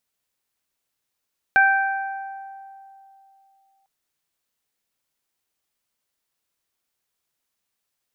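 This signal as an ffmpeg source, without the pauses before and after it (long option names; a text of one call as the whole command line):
ffmpeg -f lavfi -i "aevalsrc='0.141*pow(10,-3*t/2.95)*sin(2*PI*781*t)+0.266*pow(10,-3*t/1.49)*sin(2*PI*1562*t)+0.0447*pow(10,-3*t/1.25)*sin(2*PI*2343*t)':duration=2.3:sample_rate=44100" out.wav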